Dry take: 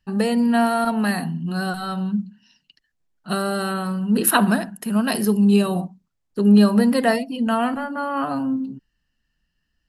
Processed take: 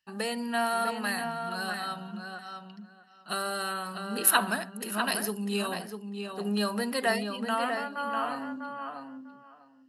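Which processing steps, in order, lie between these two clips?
high-pass 1.1 kHz 6 dB/octave; filtered feedback delay 648 ms, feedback 17%, low-pass 3.6 kHz, level -6 dB; trim -3 dB

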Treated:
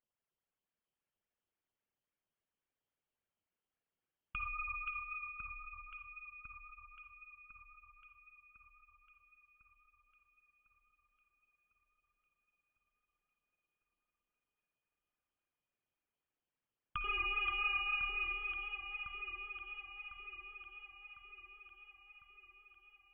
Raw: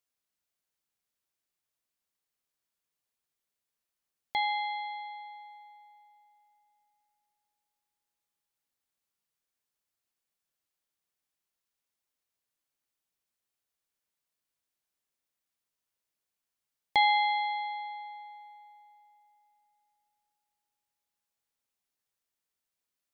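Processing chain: high-pass 55 Hz 24 dB/octave; treble shelf 2.5 kHz +8 dB; compression 12:1, threshold -29 dBFS, peak gain reduction 12.5 dB; 17.04–18.74 s: waveshaping leveller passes 3; phase shifter stages 12, 3.6 Hz, lowest notch 210–1800 Hz; echo whose repeats swap between lows and highs 526 ms, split 1.8 kHz, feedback 73%, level -3 dB; reverberation RT60 0.40 s, pre-delay 51 ms, DRR 11 dB; frequency inversion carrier 3.3 kHz; trim -3.5 dB

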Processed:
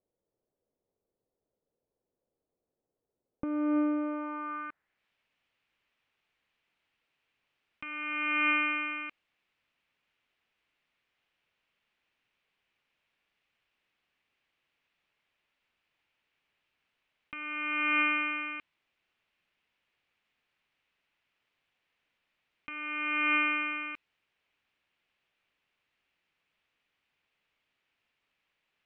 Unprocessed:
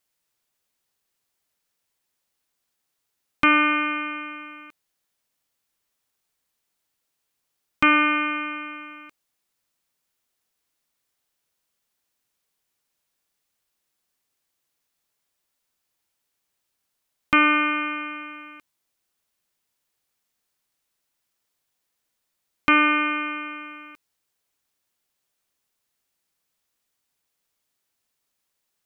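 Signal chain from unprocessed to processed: low-pass sweep 490 Hz -> 2.6 kHz, 3.96–5.05 s; compressor with a negative ratio -26 dBFS, ratio -1; trim -5.5 dB

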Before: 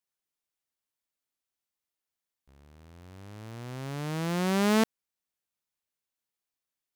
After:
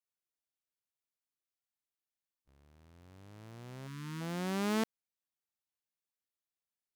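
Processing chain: spectral selection erased 3.87–4.21 s, 400–890 Hz; harmony voices +7 st -17 dB; trim -8.5 dB

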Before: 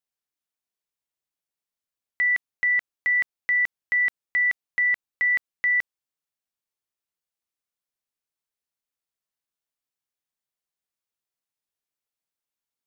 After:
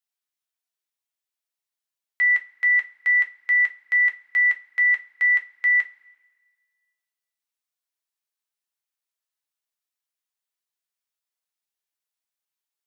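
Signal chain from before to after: high-pass 1 kHz 6 dB/octave; two-slope reverb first 0.22 s, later 1.5 s, from -20 dB, DRR 4 dB

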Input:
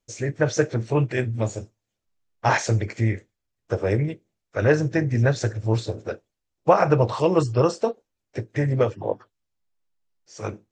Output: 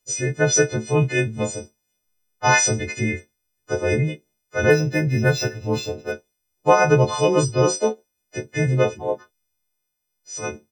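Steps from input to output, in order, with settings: partials quantised in pitch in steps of 3 st; doubling 14 ms -4.5 dB; 4.70–6.12 s: decimation joined by straight lines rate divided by 4×; trim +1 dB

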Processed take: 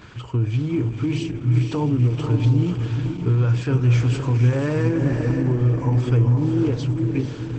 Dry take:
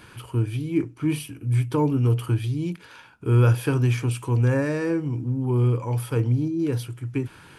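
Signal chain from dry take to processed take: bass shelf 64 Hz -4.5 dB; peak limiter -20 dBFS, peak gain reduction 11 dB; bass shelf 130 Hz +8 dB; on a send: echo that smears into a reverb 502 ms, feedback 42%, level -4.5 dB; on the sum: trim +3.5 dB; Opus 12 kbps 48 kHz

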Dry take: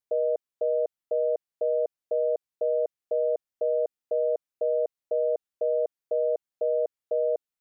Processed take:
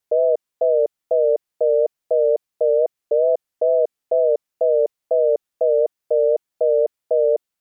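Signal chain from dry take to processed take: wow and flutter 90 cents; trim +8.5 dB

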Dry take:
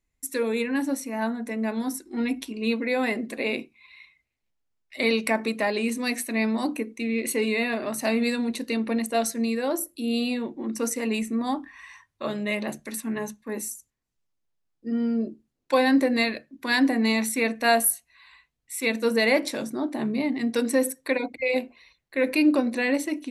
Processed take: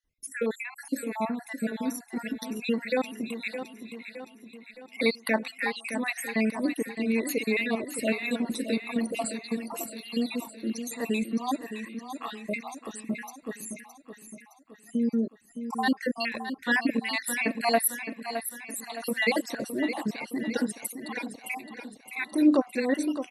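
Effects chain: random holes in the spectrogram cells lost 64%; 21.54–22.43 s: de-hum 62.21 Hz, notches 22; feedback delay 615 ms, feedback 52%, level -9.5 dB

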